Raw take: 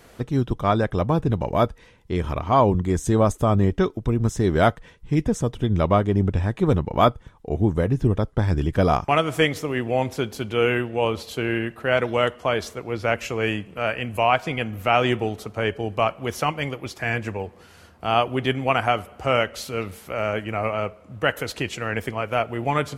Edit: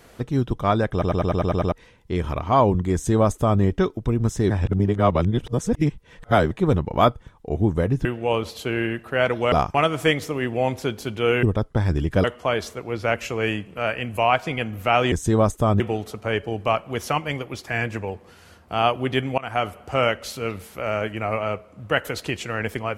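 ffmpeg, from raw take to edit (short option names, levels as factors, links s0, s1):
-filter_complex "[0:a]asplit=18[s0][s1][s2][s3][s4][s5][s6][s7][s8][s9][s10][s11][s12][s13][s14][s15][s16][s17];[s0]atrim=end=1.022[s18];[s1]atrim=start=0.918:end=1.022[s19];[s2]atrim=start=0.918:end=1.022[s20];[s3]atrim=start=0.918:end=1.022[s21];[s4]atrim=start=0.918:end=1.022[s22];[s5]atrim=start=0.918:end=1.022[s23];[s6]atrim=start=0.918:end=1.022[s24];[s7]atrim=start=0.918:end=1.022[s25];[s8]atrim=start=1.718:end=4.502[s26];[s9]atrim=start=4.498:end=6.512,asetpts=PTS-STARTPTS,areverse[s27];[s10]atrim=start=6.508:end=8.052[s28];[s11]atrim=start=10.768:end=12.242[s29];[s12]atrim=start=8.858:end=10.772[s30];[s13]atrim=start=8.048:end=8.862[s31];[s14]atrim=start=12.238:end=15.122[s32];[s15]atrim=start=2.928:end=3.612[s33];[s16]atrim=start=15.118:end=18.7,asetpts=PTS-STARTPTS,afade=t=out:st=3.578:d=0.004:c=hsin:silence=0.0630957[s34];[s17]atrim=start=18.7,asetpts=PTS-STARTPTS,afade=t=in:d=0.28:silence=0.0630957[s35];[s18][s19]acrossfade=d=0.004:c1=hsin:c2=hsin[s36];[s36][s20]acrossfade=d=0.004:c1=hsin:c2=hsin[s37];[s37][s21]acrossfade=d=0.004:c1=hsin:c2=hsin[s38];[s38][s22]acrossfade=d=0.004:c1=hsin:c2=hsin[s39];[s39][s23]acrossfade=d=0.004:c1=hsin:c2=hsin[s40];[s40][s24]acrossfade=d=0.004:c1=hsin:c2=hsin[s41];[s41][s25]acrossfade=d=0.004:c1=hsin:c2=hsin[s42];[s42][s26]acrossfade=d=0.004:c1=hsin:c2=hsin[s43];[s43][s27]acrossfade=d=0.004:c1=hsin:c2=hsin[s44];[s44][s28]acrossfade=d=0.004:c1=hsin:c2=hsin[s45];[s45][s29]acrossfade=d=0.004:c1=hsin:c2=hsin[s46];[s46][s30]acrossfade=d=0.004:c1=hsin:c2=hsin[s47];[s47][s31]acrossfade=d=0.004:c1=hsin:c2=hsin[s48];[s48][s32]acrossfade=d=0.004:c1=hsin:c2=hsin[s49];[s49][s33]acrossfade=d=0.004:c1=hsin:c2=hsin[s50];[s34][s35]concat=n=2:v=0:a=1[s51];[s50][s51]acrossfade=d=0.004:c1=hsin:c2=hsin"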